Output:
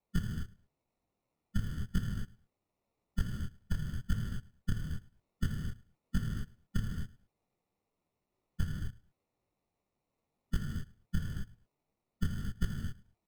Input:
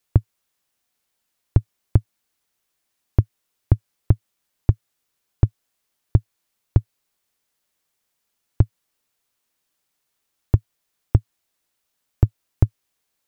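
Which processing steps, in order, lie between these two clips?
spectral magnitudes quantised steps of 30 dB
elliptic band-stop filter 220–1,100 Hz
parametric band 1,100 Hz −14 dB 0.26 octaves
downward compressor 6 to 1, threshold −23 dBFS, peak gain reduction 13.5 dB
high-frequency loss of the air 73 metres
on a send: repeating echo 108 ms, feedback 28%, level −22 dB
on the sum: reverb whose tail is shaped and stops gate 280 ms flat, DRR −0.5 dB
sample-rate reduction 1,600 Hz, jitter 0%
micro pitch shift up and down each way 33 cents
level −1 dB

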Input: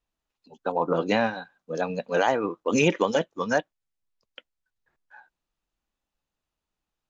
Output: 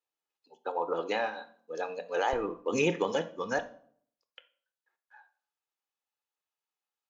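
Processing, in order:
high-pass filter 360 Hz 12 dB per octave, from 0:02.33 69 Hz, from 0:03.59 600 Hz
convolution reverb RT60 0.60 s, pre-delay 3 ms, DRR 11 dB
level −7 dB

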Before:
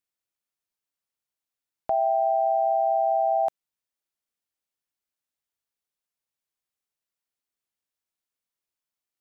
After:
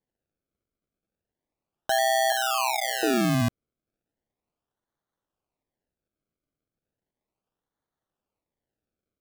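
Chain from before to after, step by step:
sample-and-hold swept by an LFO 33×, swing 100% 0.35 Hz
0:02.32–0:03.03: Chebyshev high-pass filter 880 Hz, order 3

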